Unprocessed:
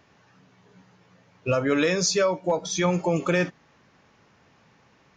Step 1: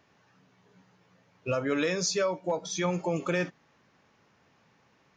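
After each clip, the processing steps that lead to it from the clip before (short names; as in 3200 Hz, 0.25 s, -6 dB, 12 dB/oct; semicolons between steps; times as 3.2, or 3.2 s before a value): low shelf 64 Hz -7.5 dB; gain -5.5 dB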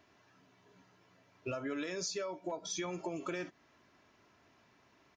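comb 3 ms, depth 49%; compressor 6:1, threshold -34 dBFS, peak gain reduction 11 dB; gain -2 dB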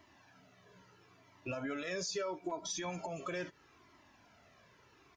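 limiter -33 dBFS, peak gain reduction 6.5 dB; cascading flanger falling 0.76 Hz; gain +7.5 dB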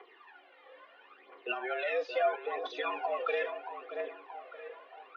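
tape echo 0.627 s, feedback 55%, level -6.5 dB, low-pass 2400 Hz; phaser 0.75 Hz, delay 2.8 ms, feedback 64%; mistuned SSB +110 Hz 250–3300 Hz; gain +5 dB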